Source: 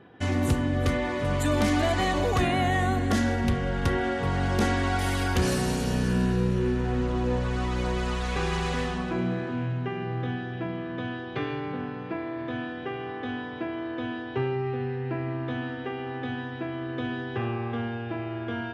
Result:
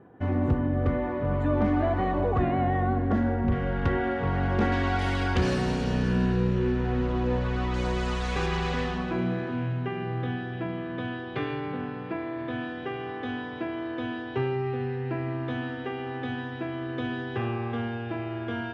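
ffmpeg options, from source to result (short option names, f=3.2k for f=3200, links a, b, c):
-af "asetnsamples=n=441:p=0,asendcmd='3.52 lowpass f 2300;4.72 lowpass f 4000;7.74 lowpass f 7900;8.46 lowpass f 4900;12.61 lowpass f 8600',lowpass=1.2k"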